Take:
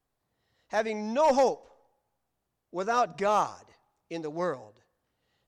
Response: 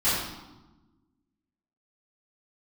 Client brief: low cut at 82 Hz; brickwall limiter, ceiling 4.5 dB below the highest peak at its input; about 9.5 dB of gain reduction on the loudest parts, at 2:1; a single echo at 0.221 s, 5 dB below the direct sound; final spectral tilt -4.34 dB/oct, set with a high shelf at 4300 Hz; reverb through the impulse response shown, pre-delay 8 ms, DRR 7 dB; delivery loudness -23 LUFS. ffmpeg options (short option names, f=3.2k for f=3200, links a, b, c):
-filter_complex "[0:a]highpass=82,highshelf=f=4.3k:g=9,acompressor=threshold=-36dB:ratio=2,alimiter=level_in=2.5dB:limit=-24dB:level=0:latency=1,volume=-2.5dB,aecho=1:1:221:0.562,asplit=2[a][b];[1:a]atrim=start_sample=2205,adelay=8[c];[b][c]afir=irnorm=-1:irlink=0,volume=-21dB[d];[a][d]amix=inputs=2:normalize=0,volume=14dB"